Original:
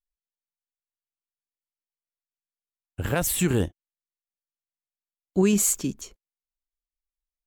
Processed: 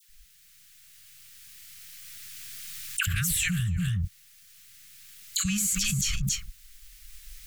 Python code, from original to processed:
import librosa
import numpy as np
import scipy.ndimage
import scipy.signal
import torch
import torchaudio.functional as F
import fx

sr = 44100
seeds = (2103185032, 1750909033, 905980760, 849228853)

p1 = fx.recorder_agc(x, sr, target_db=-20.0, rise_db_per_s=7.4, max_gain_db=30)
p2 = fx.band_shelf(p1, sr, hz=680.0, db=-10.5, octaves=2.3)
p3 = fx.dispersion(p2, sr, late='lows', ms=89.0, hz=1200.0)
p4 = np.clip(p3, -10.0 ** (-24.0 / 20.0), 10.0 ** (-24.0 / 20.0))
p5 = p3 + F.gain(torch.from_numpy(p4), -9.0).numpy()
p6 = fx.brickwall_bandstop(p5, sr, low_hz=190.0, high_hz=1100.0)
p7 = p6 + fx.echo_single(p6, sr, ms=279, db=-21.5, dry=0)
p8 = fx.env_flatten(p7, sr, amount_pct=100)
y = F.gain(torch.from_numpy(p8), -7.0).numpy()